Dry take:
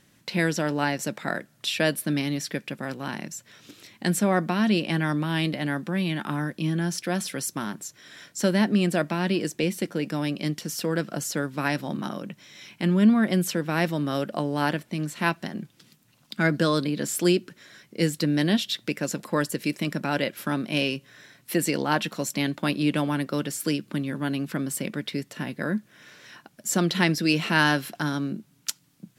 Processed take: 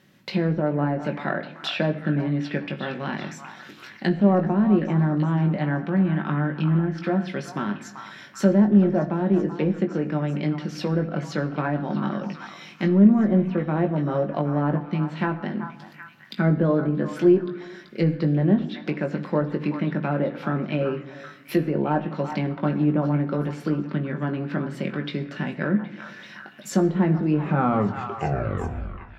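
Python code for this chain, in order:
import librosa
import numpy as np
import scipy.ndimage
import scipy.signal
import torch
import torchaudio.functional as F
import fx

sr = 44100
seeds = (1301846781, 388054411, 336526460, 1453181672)

p1 = fx.tape_stop_end(x, sr, length_s=1.86)
p2 = scipy.signal.sosfilt(scipy.signal.butter(2, 88.0, 'highpass', fs=sr, output='sos'), p1)
p3 = fx.peak_eq(p2, sr, hz=8900.0, db=-13.5, octaves=1.2)
p4 = 10.0 ** (-19.5 / 20.0) * np.tanh(p3 / 10.0 ** (-19.5 / 20.0))
p5 = p3 + F.gain(torch.from_numpy(p4), -10.0).numpy()
p6 = fx.env_lowpass_down(p5, sr, base_hz=880.0, full_db=-20.0)
p7 = fx.doubler(p6, sr, ms=20.0, db=-7)
p8 = p7 + fx.echo_stepped(p7, sr, ms=384, hz=1100.0, octaves=0.7, feedback_pct=70, wet_db=-6.5, dry=0)
y = fx.room_shoebox(p8, sr, seeds[0], volume_m3=3900.0, walls='furnished', distance_m=1.1)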